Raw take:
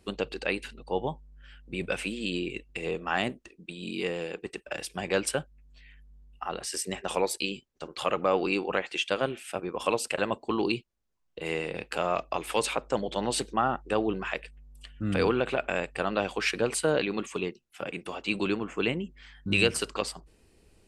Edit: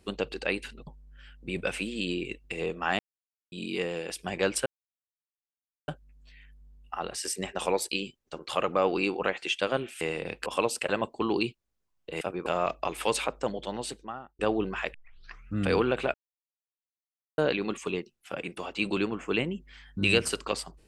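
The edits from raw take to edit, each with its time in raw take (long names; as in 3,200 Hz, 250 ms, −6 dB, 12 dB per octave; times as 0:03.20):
0:00.87–0:01.12: remove
0:03.24–0:03.77: silence
0:04.35–0:04.81: remove
0:05.37: splice in silence 1.22 s
0:09.50–0:09.75: swap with 0:11.50–0:11.95
0:12.70–0:13.88: fade out
0:14.43: tape start 0.62 s
0:15.63–0:16.87: silence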